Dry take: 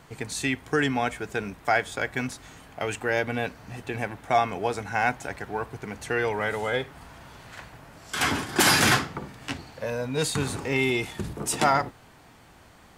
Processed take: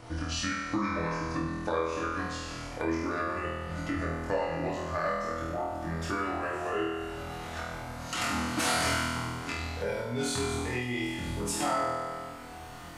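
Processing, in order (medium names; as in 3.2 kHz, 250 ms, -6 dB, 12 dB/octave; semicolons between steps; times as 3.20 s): pitch bend over the whole clip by -6.5 st ending unshifted; on a send: flutter echo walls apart 4.2 m, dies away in 1 s; on the sum: compression 2.5:1, threshold -38 dBFS, peak gain reduction 16.5 dB; FDN reverb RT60 0.46 s, high-frequency decay 0.65×, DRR 4.5 dB; trim +2.5 dB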